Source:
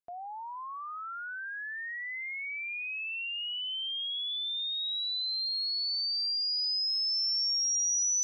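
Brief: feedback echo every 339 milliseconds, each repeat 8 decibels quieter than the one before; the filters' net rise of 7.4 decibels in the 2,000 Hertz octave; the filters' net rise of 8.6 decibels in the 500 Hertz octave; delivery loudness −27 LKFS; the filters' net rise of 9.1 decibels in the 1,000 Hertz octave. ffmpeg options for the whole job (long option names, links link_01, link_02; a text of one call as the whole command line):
ffmpeg -i in.wav -af "equalizer=frequency=500:width_type=o:gain=9,equalizer=frequency=1000:width_type=o:gain=7,equalizer=frequency=2000:width_type=o:gain=7,aecho=1:1:339|678|1017|1356|1695:0.398|0.159|0.0637|0.0255|0.0102" out.wav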